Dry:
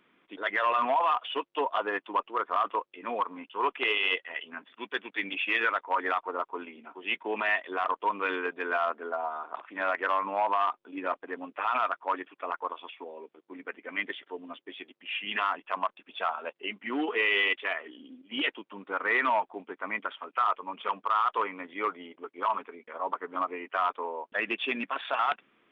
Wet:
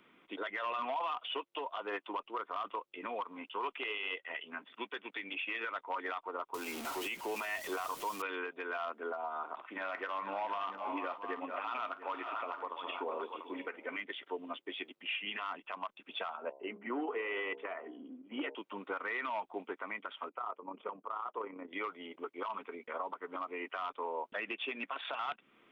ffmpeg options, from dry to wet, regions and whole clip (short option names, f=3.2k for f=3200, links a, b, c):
-filter_complex "[0:a]asettb=1/sr,asplit=3[a][b][c];[a]atrim=end=6.544[d];[b]atrim=start=6.54:end=8.22,asetpts=PTS-STARTPTS,afade=t=in:d=0.004:c=qsin,afade=t=out:st=1.676:d=0.004:c=qsin,aeval=exprs='val(0)+0.5*0.0141*sgn(val(0))':c=same,aemphasis=mode=production:type=cd[e];[c]atrim=start=8.216[f];[d][e]acrossfade=d=0.004:c1=hsin:c2=qsin[g];[g][f]acrossfade=d=0.004:c1=qsin:c2=hsin,asettb=1/sr,asplit=3[h][i][j];[h]atrim=end=9.504[k];[i]atrim=start=9.5:end=14.04,asetpts=PTS-STARTPTS,afade=t=in:d=0.004:c=qsin,afade=t=out:st=4.536:d=0.004:c=qsin,aecho=1:1:51|437|468|688:0.112|0.168|0.133|0.168,atrim=end_sample=200214,acontrast=65,flanger=delay=3:depth=4.9:regen=-80:speed=1:shape=sinusoidal[l];[j]atrim=start=14.036[m];[k][l]acrossfade=d=0.004:c1=hsin:c2=qsin[n];[n][m]acrossfade=d=0.004:c1=qsin:c2=hsin,asettb=1/sr,asplit=3[o][p][q];[o]atrim=end=16.374[r];[p]atrim=start=16.37:end=18.55,asetpts=PTS-STARTPTS,afade=t=in:d=0.004:c=qsin,afade=t=out:st=2.176:d=0.004:c=qsin,lowpass=1.2k,bandreject=f=67.92:t=h:w=4,bandreject=f=135.84:t=h:w=4,bandreject=f=203.76:t=h:w=4,bandreject=f=271.68:t=h:w=4,bandreject=f=339.6:t=h:w=4,bandreject=f=407.52:t=h:w=4,bandreject=f=475.44:t=h:w=4,bandreject=f=543.36:t=h:w=4,bandreject=f=611.28:t=h:w=4,bandreject=f=679.2:t=h:w=4,bandreject=f=747.12:t=h:w=4,bandreject=f=815.04:t=h:w=4,bandreject=f=882.96:t=h:w=4,bandreject=f=950.88:t=h:w=4,bandreject=f=1.0188k:t=h:w=4[s];[q]atrim=start=18.546[t];[r][s]acrossfade=d=0.004:c1=hsin:c2=qsin[u];[u][t]acrossfade=d=0.004:c1=qsin:c2=hsin,asettb=1/sr,asplit=3[v][w][x];[v]atrim=end=20.294[y];[w]atrim=start=20.29:end=21.73,asetpts=PTS-STARTPTS,afade=t=in:d=0.004:c=qsin,afade=t=out:st=1.436:d=0.004:c=qsin,bandpass=f=340:t=q:w=0.85,tremolo=f=33:d=0.519[z];[x]atrim=start=21.726[aa];[y][z]acrossfade=d=0.004:c1=hsin:c2=qsin[ab];[ab][aa]acrossfade=d=0.004:c1=qsin:c2=hsin,bandreject=f=1.7k:w=13,acrossover=split=290|2900[ac][ad][ae];[ac]acompressor=threshold=-55dB:ratio=4[af];[ad]acompressor=threshold=-34dB:ratio=4[ag];[ae]acompressor=threshold=-44dB:ratio=4[ah];[af][ag][ah]amix=inputs=3:normalize=0,alimiter=level_in=6dB:limit=-24dB:level=0:latency=1:release=300,volume=-6dB,volume=2dB"